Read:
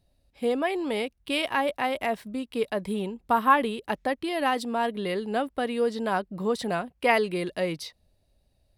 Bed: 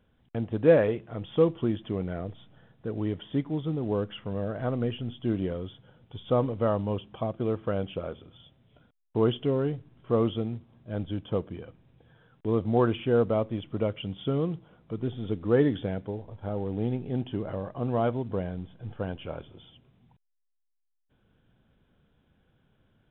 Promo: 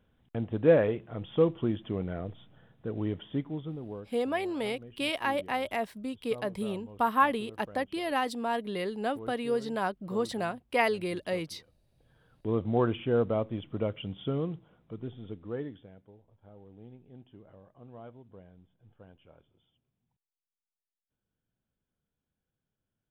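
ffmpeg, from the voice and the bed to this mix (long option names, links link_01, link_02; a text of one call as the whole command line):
ffmpeg -i stem1.wav -i stem2.wav -filter_complex "[0:a]adelay=3700,volume=-4dB[link_01];[1:a]volume=14.5dB,afade=type=out:start_time=3.16:duration=0.97:silence=0.133352,afade=type=in:start_time=11.77:duration=0.68:silence=0.149624,afade=type=out:start_time=14.22:duration=1.65:silence=0.125893[link_02];[link_01][link_02]amix=inputs=2:normalize=0" out.wav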